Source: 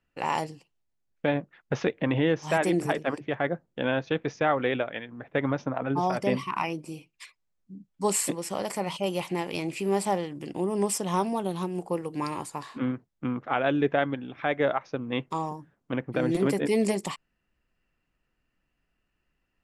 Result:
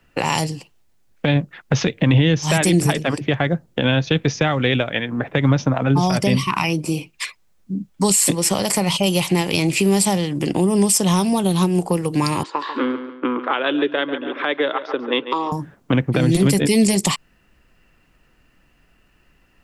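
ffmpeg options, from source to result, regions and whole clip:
-filter_complex "[0:a]asettb=1/sr,asplit=3[a][b][c];[a]atrim=end=12.434[d];[b]atrim=start=12.43:end=15.52,asetpts=PTS-STARTPTS,afade=t=in:d=0.004:c=qsin,afade=t=out:st=3.086:d=0.004:c=qsin,highpass=f=330:w=0.5412,highpass=f=330:w=1.3066,equalizer=f=340:t=q:w=4:g=4,equalizer=f=710:t=q:w=4:g=-9,equalizer=f=1k:t=q:w=4:g=3,equalizer=f=2.3k:t=q:w=4:g=-6,lowpass=f=3.8k:w=0.5412,lowpass=f=3.8k:w=1.3066,aecho=1:1:141|282|423:0.2|0.0718|0.0259,atrim=end_sample=136269[e];[c]atrim=start=15.516[f];[d][e]acrossfade=d=0.004:c1=hsin:c2=qsin[g];[g][f]acrossfade=d=0.004:c1=qsin:c2=hsin,acrossover=split=180|3000[h][i][j];[i]acompressor=threshold=-38dB:ratio=10[k];[h][k][j]amix=inputs=3:normalize=0,alimiter=level_in=24.5dB:limit=-1dB:release=50:level=0:latency=1,volume=-5.5dB"

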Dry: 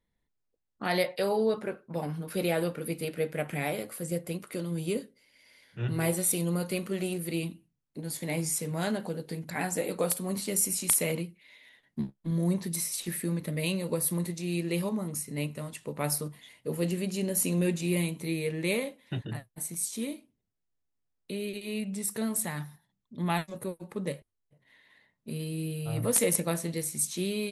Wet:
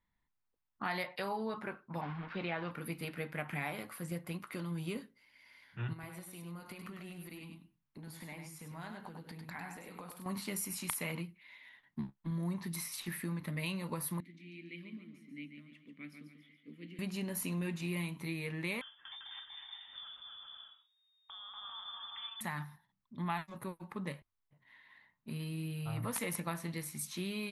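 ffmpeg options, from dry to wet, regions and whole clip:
-filter_complex "[0:a]asettb=1/sr,asplit=3[a][b][c];[a]atrim=end=2.014[d];[b]atrim=start=2.01:end=2.71,asetpts=PTS-STARTPTS,afade=t=in:d=0.004:c=qsin,afade=t=out:st=0.696:d=0.004:c=qsin,lowshelf=f=340:g=-2.5,acrusher=bits=6:mix=0:aa=0.5,lowpass=f=3.7k:w=0.5412,lowpass=f=3.7k:w=1.3066[e];[c]atrim=start=2.706[f];[d][e]acrossfade=d=0.004:c1=hsin:c2=qsin[g];[g][f]acrossfade=d=0.004:c1=qsin:c2=hsin,asettb=1/sr,asplit=3[h][i][j];[h]atrim=end=5.934[k];[i]atrim=start=5.93:end=10.26,asetpts=PTS-STARTPTS,afade=t=in:d=0.004:c=qsin,afade=t=out:st=4.326:d=0.004:c=qsin,acompressor=threshold=-39dB:ratio=12:attack=3.2:release=140:knee=1:detection=peak,aecho=1:1:100:0.501,atrim=end_sample=190953[l];[j]atrim=start=10.256[m];[k][l]acrossfade=d=0.004:c1=hsin:c2=qsin[n];[n][m]acrossfade=d=0.004:c1=qsin:c2=hsin,asettb=1/sr,asplit=3[o][p][q];[o]atrim=end=14.204[r];[p]atrim=start=14.2:end=16.99,asetpts=PTS-STARTPTS,afade=t=in:d=0.004:c=qsin,afade=t=out:st=2.786:d=0.004:c=qsin,asplit=3[s][t][u];[s]bandpass=f=270:t=q:w=8,volume=0dB[v];[t]bandpass=f=2.29k:t=q:w=8,volume=-6dB[w];[u]bandpass=f=3.01k:t=q:w=8,volume=-9dB[x];[v][w][x]amix=inputs=3:normalize=0,aecho=1:1:141|282|423|564|705:0.422|0.177|0.0744|0.0312|0.0131,atrim=end_sample=123039[y];[q]atrim=start=16.986[z];[r][y]acrossfade=d=0.004:c1=hsin:c2=qsin[aa];[aa][z]acrossfade=d=0.004:c1=qsin:c2=hsin,asettb=1/sr,asplit=3[ab][ac][ad];[ab]atrim=end=18.814[ae];[ac]atrim=start=18.81:end=22.41,asetpts=PTS-STARTPTS,afade=t=in:d=0.004:c=qsin,afade=t=out:st=3.596:d=0.004:c=qsin,acompressor=threshold=-47dB:ratio=3:attack=3.2:release=140:knee=1:detection=peak,aecho=1:1:240|396|497.4|563.3|606.2:0.794|0.631|0.501|0.398|0.316,atrim=end_sample=158760,lowpass=f=3.1k:t=q:w=0.5098,lowpass=f=3.1k:t=q:w=0.6013,lowpass=f=3.1k:t=q:w=0.9,lowpass=f=3.1k:t=q:w=2.563,afreqshift=-3700[af];[ad]atrim=start=22.406[ag];[ae][af]acrossfade=d=0.004:c1=hsin:c2=qsin[ah];[ah][ag]acrossfade=d=0.004:c1=qsin:c2=hsin,equalizer=f=500:t=o:w=1:g=-10,equalizer=f=1k:t=o:w=1:g=9,equalizer=f=2k:t=o:w=1:g=3,equalizer=f=8k:t=o:w=1:g=-10,acompressor=threshold=-32dB:ratio=2.5,volume=-3.5dB"

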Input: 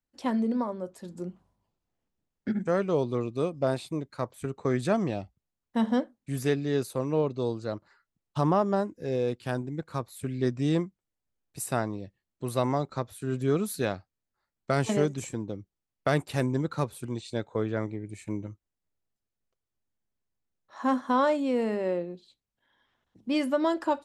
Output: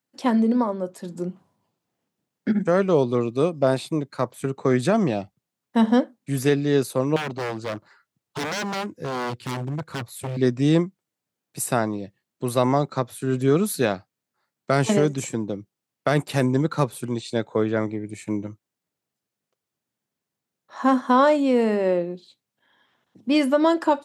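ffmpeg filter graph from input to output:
-filter_complex "[0:a]asettb=1/sr,asplit=3[a][b][c];[a]atrim=end=7.164[d];[b]atrim=start=7.16:end=10.37,asetpts=PTS-STARTPTS,afade=t=in:d=0.004:c=qsin,afade=t=out:st=3.206:d=0.004:c=qsin,asubboost=boost=7.5:cutoff=100,aeval=exprs='0.0316*(abs(mod(val(0)/0.0316+3,4)-2)-1)':c=same[e];[c]atrim=start=10.366[f];[d][e]acrossfade=d=0.004:c1=hsin:c2=qsin[g];[g][f]acrossfade=d=0.004:c1=qsin:c2=hsin,highpass=f=120:w=0.5412,highpass=f=120:w=1.3066,alimiter=level_in=15dB:limit=-1dB:release=50:level=0:latency=1,volume=-7.5dB"

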